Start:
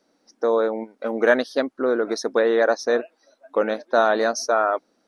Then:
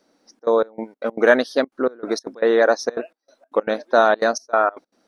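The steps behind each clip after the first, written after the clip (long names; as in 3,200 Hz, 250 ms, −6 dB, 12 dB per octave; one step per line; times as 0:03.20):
gate pattern "xxxxx.xx..xx.x.x" 192 BPM −24 dB
level +3 dB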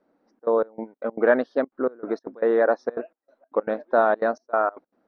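low-pass filter 1,500 Hz 12 dB per octave
level −3.5 dB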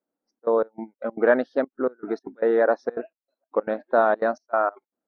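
noise reduction from a noise print of the clip's start 19 dB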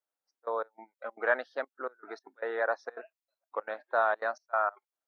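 high-pass filter 940 Hz 12 dB per octave
level −2 dB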